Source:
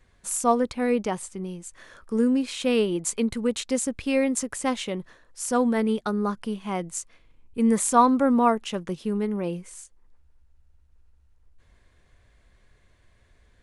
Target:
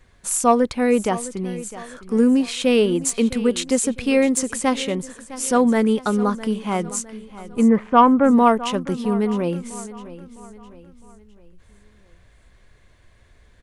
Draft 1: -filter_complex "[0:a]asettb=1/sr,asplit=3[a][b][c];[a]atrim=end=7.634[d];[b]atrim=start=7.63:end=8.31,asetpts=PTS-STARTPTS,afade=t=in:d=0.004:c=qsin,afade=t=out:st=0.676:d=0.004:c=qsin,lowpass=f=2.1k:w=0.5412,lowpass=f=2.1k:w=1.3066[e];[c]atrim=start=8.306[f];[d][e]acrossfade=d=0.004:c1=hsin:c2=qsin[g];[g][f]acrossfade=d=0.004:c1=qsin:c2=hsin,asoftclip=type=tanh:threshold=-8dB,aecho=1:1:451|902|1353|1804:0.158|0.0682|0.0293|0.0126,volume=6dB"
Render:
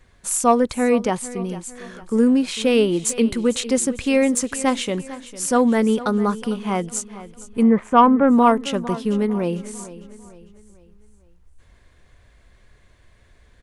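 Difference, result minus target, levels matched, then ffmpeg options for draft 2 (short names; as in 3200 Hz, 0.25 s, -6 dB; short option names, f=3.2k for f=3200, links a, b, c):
echo 0.207 s early
-filter_complex "[0:a]asettb=1/sr,asplit=3[a][b][c];[a]atrim=end=7.634[d];[b]atrim=start=7.63:end=8.31,asetpts=PTS-STARTPTS,afade=t=in:d=0.004:c=qsin,afade=t=out:st=0.676:d=0.004:c=qsin,lowpass=f=2.1k:w=0.5412,lowpass=f=2.1k:w=1.3066[e];[c]atrim=start=8.306[f];[d][e]acrossfade=d=0.004:c1=hsin:c2=qsin[g];[g][f]acrossfade=d=0.004:c1=qsin:c2=hsin,asoftclip=type=tanh:threshold=-8dB,aecho=1:1:658|1316|1974|2632:0.158|0.0682|0.0293|0.0126,volume=6dB"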